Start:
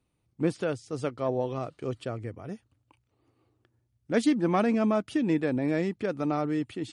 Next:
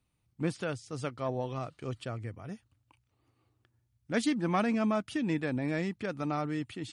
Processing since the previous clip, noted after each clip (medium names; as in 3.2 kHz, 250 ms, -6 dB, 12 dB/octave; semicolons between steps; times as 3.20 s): peaking EQ 410 Hz -7.5 dB 1.7 oct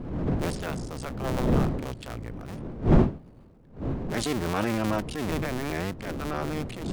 cycle switcher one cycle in 2, muted; wind noise 240 Hz -33 dBFS; transient shaper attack -8 dB, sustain +4 dB; trim +5 dB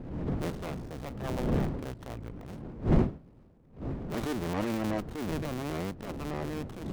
sliding maximum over 17 samples; trim -5 dB